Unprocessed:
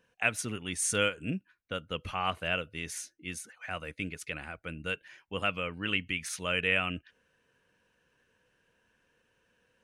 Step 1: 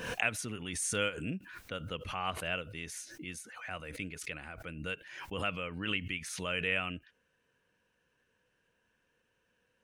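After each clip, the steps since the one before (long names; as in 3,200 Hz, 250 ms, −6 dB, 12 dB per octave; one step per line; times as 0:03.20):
background raised ahead of every attack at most 55 dB per second
level −4.5 dB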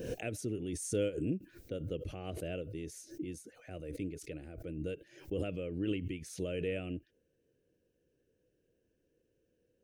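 drawn EQ curve 130 Hz 0 dB, 220 Hz −4 dB, 330 Hz +7 dB, 620 Hz −4 dB, 1,000 Hz −26 dB, 1,600 Hz −19 dB, 3,300 Hz −15 dB, 5,700 Hz −9 dB, 11,000 Hz −10 dB, 15,000 Hz −3 dB
level +3 dB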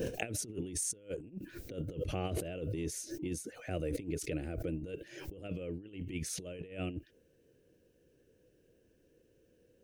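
compressor whose output falls as the input rises −42 dBFS, ratio −0.5
level +4 dB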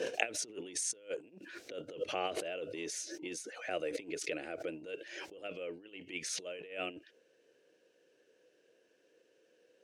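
band-pass filter 610–5,900 Hz
level +6.5 dB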